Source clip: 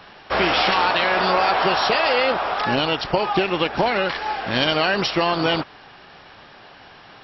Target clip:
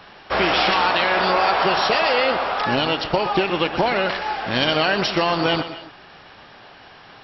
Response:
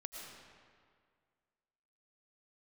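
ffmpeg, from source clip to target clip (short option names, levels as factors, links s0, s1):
-filter_complex "[0:a]asplit=2[s0][s1];[1:a]atrim=start_sample=2205,afade=t=out:st=0.21:d=0.01,atrim=end_sample=9702,adelay=122[s2];[s1][s2]afir=irnorm=-1:irlink=0,volume=0.473[s3];[s0][s3]amix=inputs=2:normalize=0"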